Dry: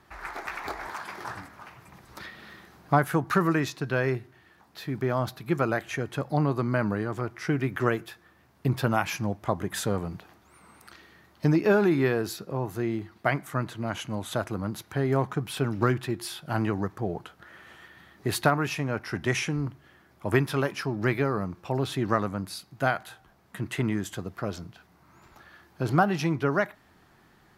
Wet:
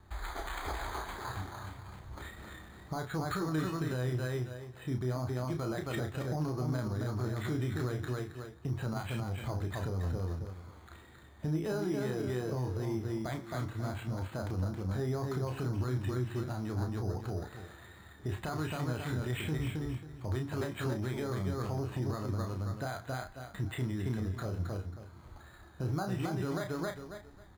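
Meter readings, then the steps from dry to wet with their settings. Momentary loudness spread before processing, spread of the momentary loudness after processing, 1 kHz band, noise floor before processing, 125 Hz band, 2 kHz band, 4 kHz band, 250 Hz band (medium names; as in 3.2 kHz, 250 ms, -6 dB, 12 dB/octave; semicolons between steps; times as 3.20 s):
14 LU, 12 LU, -11.0 dB, -60 dBFS, -3.5 dB, -12.0 dB, -8.5 dB, -8.0 dB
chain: feedback delay 270 ms, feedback 23%, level -6 dB; careless resampling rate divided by 8×, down filtered, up hold; resonant low shelf 110 Hz +7.5 dB, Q 1.5; wow and flutter 26 cents; compression, threshold -25 dBFS, peak gain reduction 9 dB; flange 0.33 Hz, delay 4.5 ms, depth 5.2 ms, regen +88%; tilt EQ -1.5 dB/octave; peak limiter -26.5 dBFS, peak gain reduction 10 dB; doubling 32 ms -6 dB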